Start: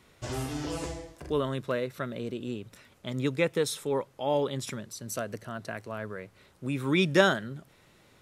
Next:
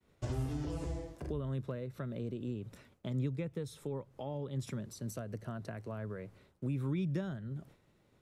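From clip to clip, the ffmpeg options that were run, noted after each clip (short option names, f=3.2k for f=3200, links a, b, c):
-filter_complex "[0:a]agate=range=-33dB:threshold=-52dB:ratio=3:detection=peak,acrossover=split=140[a][b];[b]acompressor=threshold=-39dB:ratio=10[c];[a][c]amix=inputs=2:normalize=0,tiltshelf=f=800:g=5,volume=-2dB"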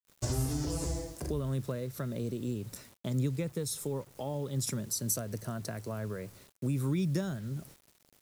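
-af "aexciter=amount=2.8:drive=8.8:freq=4.4k,acrusher=bits=9:mix=0:aa=0.000001,volume=4dB"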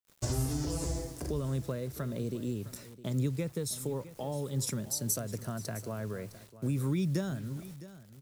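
-af "aecho=1:1:660:0.158"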